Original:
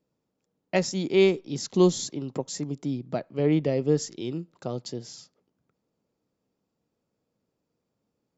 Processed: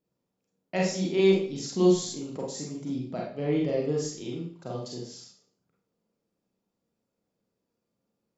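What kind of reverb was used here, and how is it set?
Schroeder reverb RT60 0.48 s, combs from 32 ms, DRR -3.5 dB; gain -7 dB

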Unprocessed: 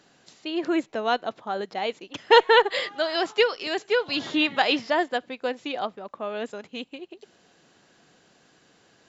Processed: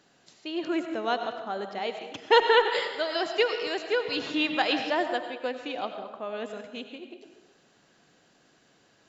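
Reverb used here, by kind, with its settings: digital reverb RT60 1.1 s, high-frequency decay 0.75×, pre-delay 55 ms, DRR 6.5 dB; gain -4 dB

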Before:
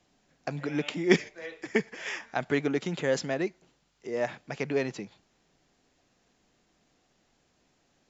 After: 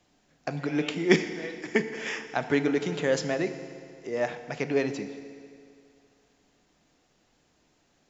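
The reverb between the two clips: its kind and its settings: FDN reverb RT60 2.4 s, low-frequency decay 0.9×, high-frequency decay 0.9×, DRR 9 dB; gain +1.5 dB

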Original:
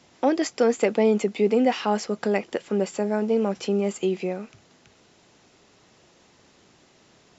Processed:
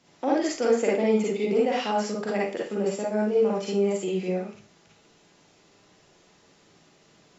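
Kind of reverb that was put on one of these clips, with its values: Schroeder reverb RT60 0.35 s, DRR -5 dB; gain -7.5 dB

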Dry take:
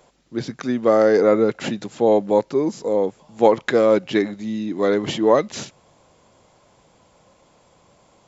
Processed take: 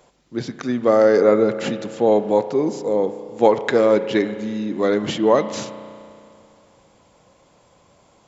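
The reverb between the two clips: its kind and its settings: spring tank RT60 2.5 s, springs 33 ms, chirp 55 ms, DRR 11 dB

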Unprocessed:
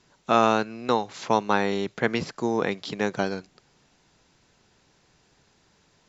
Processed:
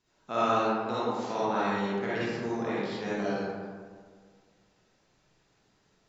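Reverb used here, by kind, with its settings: digital reverb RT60 1.8 s, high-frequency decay 0.45×, pre-delay 15 ms, DRR -10 dB; gain -15.5 dB

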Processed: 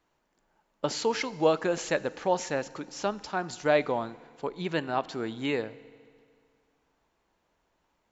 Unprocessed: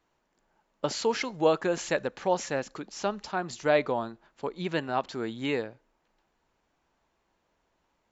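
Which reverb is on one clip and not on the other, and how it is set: FDN reverb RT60 2.1 s, low-frequency decay 1×, high-frequency decay 0.95×, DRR 17.5 dB

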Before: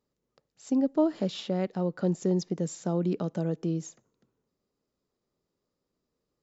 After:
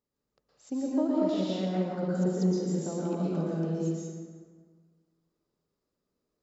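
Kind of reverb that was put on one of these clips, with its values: plate-style reverb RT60 1.6 s, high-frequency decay 0.6×, pre-delay 0.105 s, DRR -6 dB; gain -7.5 dB

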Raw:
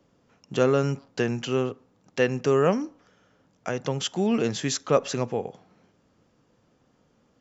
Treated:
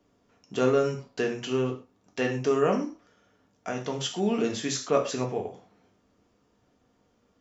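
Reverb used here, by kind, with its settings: non-linear reverb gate 0.15 s falling, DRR 1.5 dB; gain -4.5 dB

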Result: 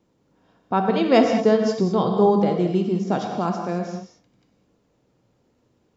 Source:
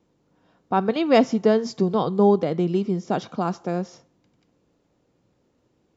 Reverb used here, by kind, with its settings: non-linear reverb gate 0.24 s flat, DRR 3 dB

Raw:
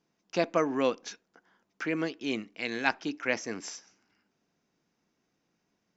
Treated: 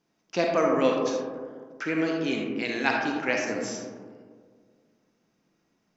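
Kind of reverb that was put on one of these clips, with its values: digital reverb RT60 1.8 s, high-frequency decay 0.25×, pre-delay 10 ms, DRR 0 dB; gain +1.5 dB

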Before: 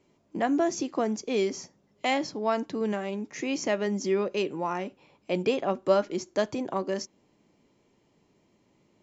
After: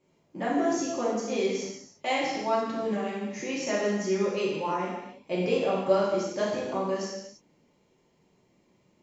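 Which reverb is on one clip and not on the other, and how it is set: non-linear reverb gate 0.37 s falling, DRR -7.5 dB; gain -7.5 dB

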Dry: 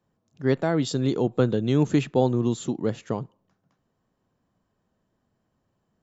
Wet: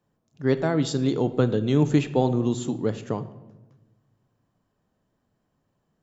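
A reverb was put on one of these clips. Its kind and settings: shoebox room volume 510 m³, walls mixed, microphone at 0.36 m

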